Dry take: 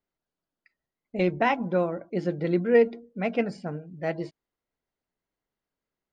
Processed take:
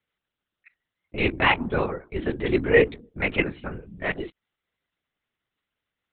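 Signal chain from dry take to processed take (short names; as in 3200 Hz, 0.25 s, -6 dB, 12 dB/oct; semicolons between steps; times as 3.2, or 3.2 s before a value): bell 670 Hz -10 dB 0.84 oct; LPC vocoder at 8 kHz whisper; tilt +2.5 dB/oct; gain +8 dB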